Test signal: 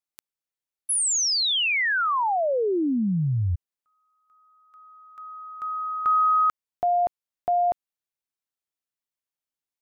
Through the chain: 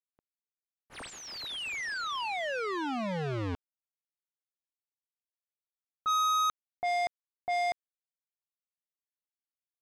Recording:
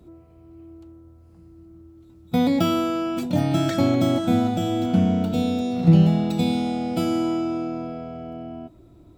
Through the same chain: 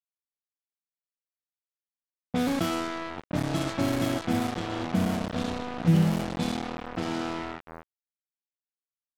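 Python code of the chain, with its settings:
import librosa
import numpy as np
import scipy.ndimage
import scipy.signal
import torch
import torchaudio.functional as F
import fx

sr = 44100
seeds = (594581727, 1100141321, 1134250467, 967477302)

y = np.where(np.abs(x) >= 10.0 ** (-21.0 / 20.0), x, 0.0)
y = fx.env_lowpass(y, sr, base_hz=700.0, full_db=-16.0)
y = F.gain(torch.from_numpy(y), -6.5).numpy()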